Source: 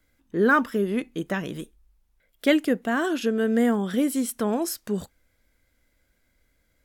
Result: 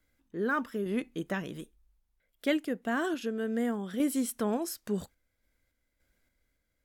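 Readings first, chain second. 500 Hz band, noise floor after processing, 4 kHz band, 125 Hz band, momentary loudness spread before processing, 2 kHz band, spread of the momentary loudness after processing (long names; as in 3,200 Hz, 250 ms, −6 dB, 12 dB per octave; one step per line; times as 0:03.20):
−8.0 dB, −79 dBFS, −8.0 dB, −7.0 dB, 11 LU, −9.0 dB, 8 LU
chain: sample-and-hold tremolo 3.5 Hz
level −4.5 dB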